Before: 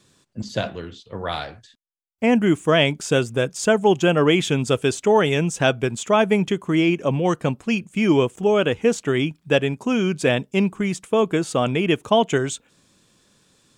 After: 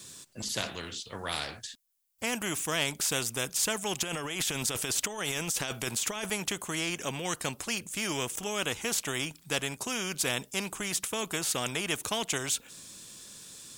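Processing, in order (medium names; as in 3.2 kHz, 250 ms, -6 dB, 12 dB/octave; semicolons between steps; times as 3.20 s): pre-emphasis filter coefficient 0.8; 4.03–6.30 s: compressor with a negative ratio -36 dBFS, ratio -1; spectrum-flattening compressor 2:1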